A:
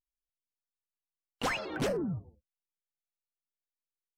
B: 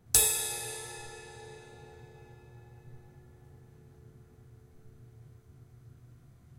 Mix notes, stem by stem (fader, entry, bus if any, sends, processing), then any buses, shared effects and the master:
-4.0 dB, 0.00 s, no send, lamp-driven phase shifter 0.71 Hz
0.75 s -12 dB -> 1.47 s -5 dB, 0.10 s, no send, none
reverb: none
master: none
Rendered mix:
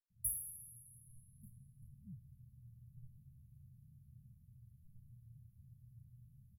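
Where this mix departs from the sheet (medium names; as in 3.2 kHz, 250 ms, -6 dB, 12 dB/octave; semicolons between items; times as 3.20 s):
stem A -4.0 dB -> -12.0 dB; master: extra brick-wall FIR band-stop 220–10000 Hz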